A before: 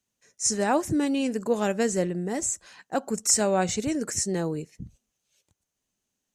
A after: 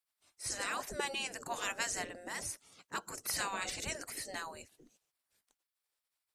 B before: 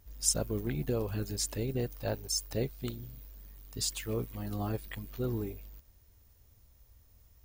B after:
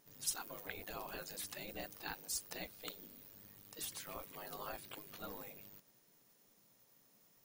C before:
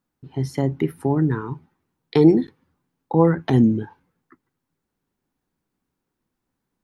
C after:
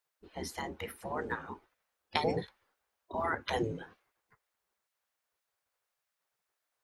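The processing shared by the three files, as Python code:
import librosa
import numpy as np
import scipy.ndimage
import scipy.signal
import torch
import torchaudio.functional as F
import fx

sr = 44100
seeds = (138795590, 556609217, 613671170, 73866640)

y = fx.spec_gate(x, sr, threshold_db=-15, keep='weak')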